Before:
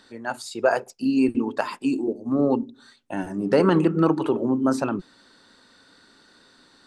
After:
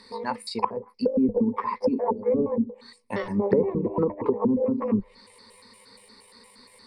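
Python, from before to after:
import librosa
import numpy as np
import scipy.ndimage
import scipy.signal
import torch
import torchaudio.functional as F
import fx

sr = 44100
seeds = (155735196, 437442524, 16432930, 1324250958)

y = fx.pitch_trill(x, sr, semitones=12.0, every_ms=117)
y = fx.ripple_eq(y, sr, per_octave=0.91, db=17)
y = fx.env_lowpass_down(y, sr, base_hz=310.0, full_db=-16.0)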